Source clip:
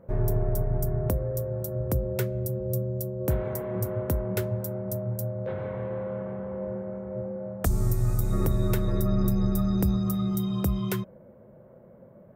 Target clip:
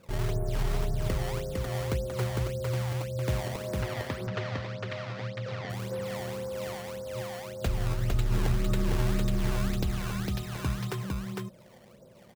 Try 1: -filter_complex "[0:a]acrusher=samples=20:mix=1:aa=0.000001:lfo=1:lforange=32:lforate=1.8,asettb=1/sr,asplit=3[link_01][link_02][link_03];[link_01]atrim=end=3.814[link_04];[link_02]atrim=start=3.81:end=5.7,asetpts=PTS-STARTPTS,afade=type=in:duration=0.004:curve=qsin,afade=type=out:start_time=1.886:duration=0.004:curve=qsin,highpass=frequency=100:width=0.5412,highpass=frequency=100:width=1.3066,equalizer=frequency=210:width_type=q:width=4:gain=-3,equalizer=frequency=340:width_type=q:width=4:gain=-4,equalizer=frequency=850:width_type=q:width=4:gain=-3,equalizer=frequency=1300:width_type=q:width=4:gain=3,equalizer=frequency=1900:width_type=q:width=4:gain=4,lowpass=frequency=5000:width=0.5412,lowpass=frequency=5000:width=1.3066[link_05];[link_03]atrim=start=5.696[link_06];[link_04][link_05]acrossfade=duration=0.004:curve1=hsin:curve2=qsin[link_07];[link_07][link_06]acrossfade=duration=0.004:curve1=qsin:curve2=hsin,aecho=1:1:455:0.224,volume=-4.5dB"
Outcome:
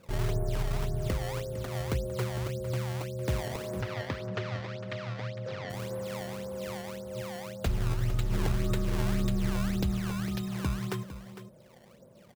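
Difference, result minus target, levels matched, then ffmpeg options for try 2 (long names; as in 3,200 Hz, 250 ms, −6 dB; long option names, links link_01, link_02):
echo-to-direct −10 dB
-filter_complex "[0:a]acrusher=samples=20:mix=1:aa=0.000001:lfo=1:lforange=32:lforate=1.8,asettb=1/sr,asplit=3[link_01][link_02][link_03];[link_01]atrim=end=3.814[link_04];[link_02]atrim=start=3.81:end=5.7,asetpts=PTS-STARTPTS,afade=type=in:duration=0.004:curve=qsin,afade=type=out:start_time=1.886:duration=0.004:curve=qsin,highpass=frequency=100:width=0.5412,highpass=frequency=100:width=1.3066,equalizer=frequency=210:width_type=q:width=4:gain=-3,equalizer=frequency=340:width_type=q:width=4:gain=-4,equalizer=frequency=850:width_type=q:width=4:gain=-3,equalizer=frequency=1300:width_type=q:width=4:gain=3,equalizer=frequency=1900:width_type=q:width=4:gain=4,lowpass=frequency=5000:width=0.5412,lowpass=frequency=5000:width=1.3066[link_05];[link_03]atrim=start=5.696[link_06];[link_04][link_05]acrossfade=duration=0.004:curve1=hsin:curve2=qsin[link_07];[link_07][link_06]acrossfade=duration=0.004:curve1=qsin:curve2=hsin,aecho=1:1:455:0.708,volume=-4.5dB"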